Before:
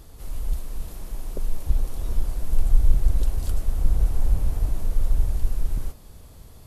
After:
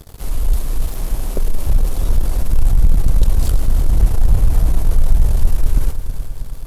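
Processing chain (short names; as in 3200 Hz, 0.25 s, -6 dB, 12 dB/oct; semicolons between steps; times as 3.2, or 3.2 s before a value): sample leveller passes 3; multi-head echo 0.108 s, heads first and third, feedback 72%, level -14 dB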